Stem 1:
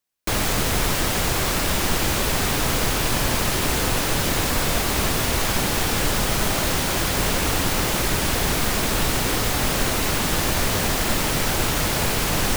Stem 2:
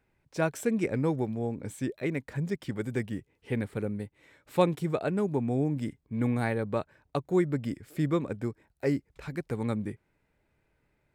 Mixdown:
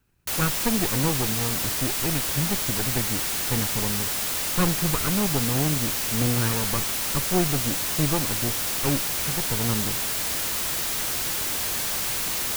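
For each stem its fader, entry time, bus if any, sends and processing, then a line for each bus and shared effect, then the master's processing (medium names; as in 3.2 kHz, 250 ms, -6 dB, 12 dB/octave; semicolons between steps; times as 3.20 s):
-2.0 dB, 0.00 s, no send, treble shelf 3.1 kHz +7 dB; integer overflow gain 20.5 dB
+2.0 dB, 0.00 s, no send, comb filter that takes the minimum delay 0.73 ms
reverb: none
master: bass shelf 190 Hz +5 dB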